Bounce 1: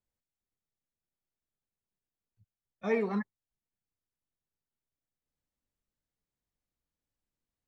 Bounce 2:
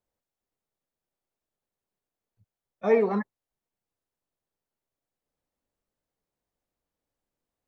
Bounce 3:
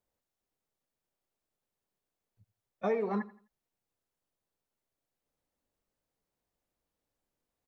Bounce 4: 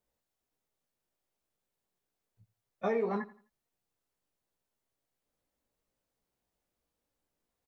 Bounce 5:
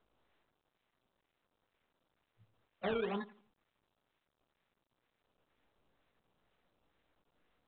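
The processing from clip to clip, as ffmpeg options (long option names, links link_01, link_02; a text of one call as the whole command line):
ffmpeg -i in.wav -af "equalizer=frequency=590:width_type=o:width=2.3:gain=10" out.wav
ffmpeg -i in.wav -af "acompressor=threshold=-28dB:ratio=6,aecho=1:1:85|170|255:0.119|0.038|0.0122" out.wav
ffmpeg -i in.wav -filter_complex "[0:a]asplit=2[link_01][link_02];[link_02]adelay=17,volume=-6dB[link_03];[link_01][link_03]amix=inputs=2:normalize=0" out.wav
ffmpeg -i in.wav -filter_complex "[0:a]acrossover=split=290[link_01][link_02];[link_02]acrusher=samples=16:mix=1:aa=0.000001:lfo=1:lforange=16:lforate=2.1[link_03];[link_01][link_03]amix=inputs=2:normalize=0,volume=-4.5dB" -ar 8000 -c:a pcm_mulaw out.wav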